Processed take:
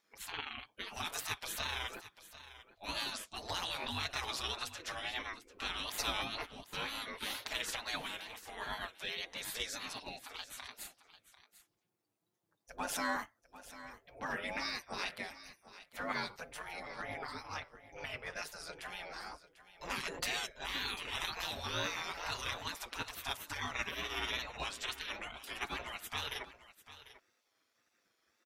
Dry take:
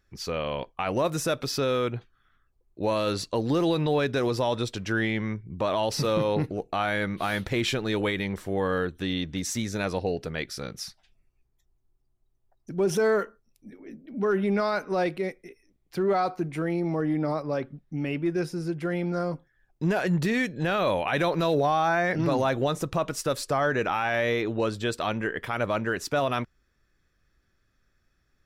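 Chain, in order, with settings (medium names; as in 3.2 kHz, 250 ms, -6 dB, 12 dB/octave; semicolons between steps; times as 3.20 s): ring modulator 50 Hz; comb 5.9 ms, depth 80%; spectral gate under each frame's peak -20 dB weak; wow and flutter 92 cents; delay 745 ms -15.5 dB; trim +2.5 dB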